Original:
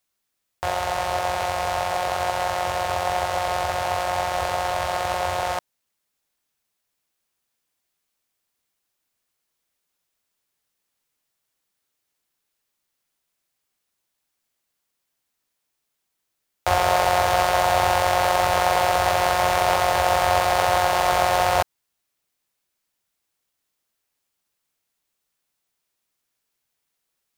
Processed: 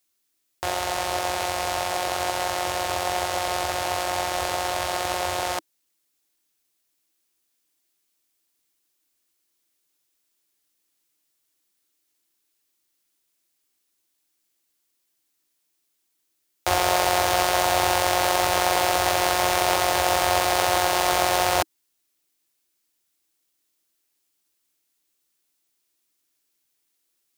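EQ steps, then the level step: bell 320 Hz +12 dB 0.55 oct; high shelf 2400 Hz +10 dB; -4.5 dB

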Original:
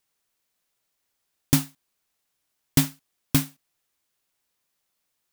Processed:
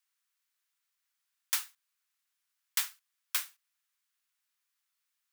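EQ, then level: ladder high-pass 1000 Hz, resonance 25%; 0.0 dB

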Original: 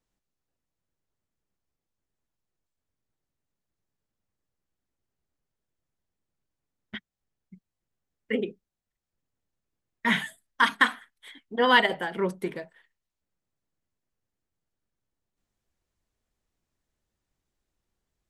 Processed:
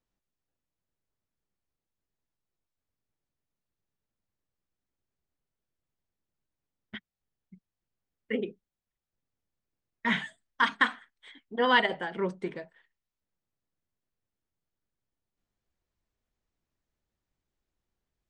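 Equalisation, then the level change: steep low-pass 9000 Hz 48 dB/oct; air absorption 60 m; -3.0 dB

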